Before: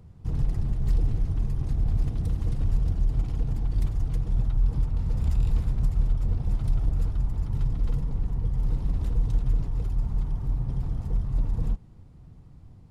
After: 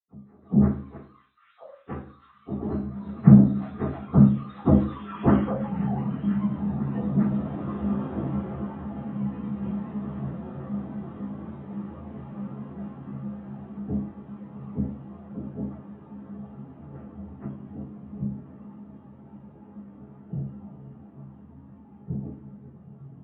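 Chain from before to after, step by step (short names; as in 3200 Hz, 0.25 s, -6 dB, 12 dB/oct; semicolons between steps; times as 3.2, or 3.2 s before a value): sine-wave speech; Doppler pass-by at 2.89, 46 m/s, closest 12 m; low shelf 390 Hz +5.5 dB; soft clip -7.5 dBFS, distortion -18 dB; diffused feedback echo 1.588 s, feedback 55%, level -8 dB; plain phase-vocoder stretch 1.8×; reverb RT60 0.50 s, pre-delay 77 ms; gain -12.5 dB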